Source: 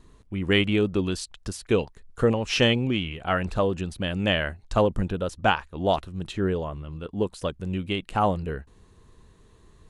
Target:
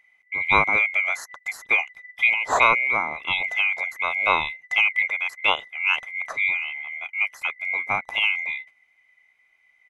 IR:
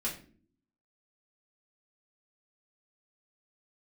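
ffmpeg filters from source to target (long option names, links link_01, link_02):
-af "afftfilt=real='real(if(lt(b,920),b+92*(1-2*mod(floor(b/92),2)),b),0)':imag='imag(if(lt(b,920),b+92*(1-2*mod(floor(b/92),2)),b),0)':win_size=2048:overlap=0.75,agate=range=-11dB:threshold=-44dB:ratio=16:detection=peak,firequalizer=gain_entry='entry(350,0);entry(840,9);entry(3300,-4)':delay=0.05:min_phase=1"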